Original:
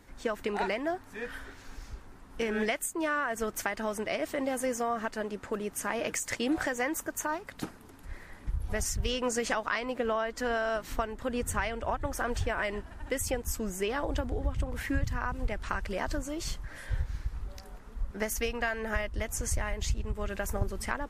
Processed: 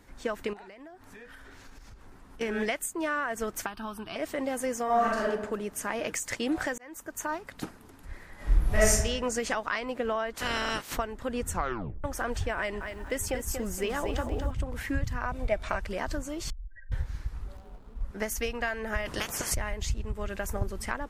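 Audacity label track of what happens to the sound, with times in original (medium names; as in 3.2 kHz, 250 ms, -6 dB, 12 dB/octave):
0.530000	2.410000	compression 12:1, threshold -44 dBFS
3.660000	4.160000	static phaser centre 2 kHz, stages 6
4.840000	5.300000	reverb throw, RT60 0.89 s, DRR -4.5 dB
6.780000	7.290000	fade in
8.350000	8.910000	reverb throw, RT60 1 s, DRR -9.5 dB
10.340000	10.960000	spectral peaks clipped ceiling under each frame's peak by 25 dB
11.490000	11.490000	tape stop 0.55 s
12.570000	14.510000	bit-crushed delay 235 ms, feedback 35%, word length 10-bit, level -6.5 dB
15.230000	15.780000	small resonant body resonances 640/2300/3600 Hz, height 12 dB -> 15 dB, ringing for 35 ms
16.500000	16.920000	spectral contrast enhancement exponent 3.8
17.570000	18.050000	median filter over 25 samples
19.050000	19.530000	spectral peaks clipped ceiling under each frame's peak by 28 dB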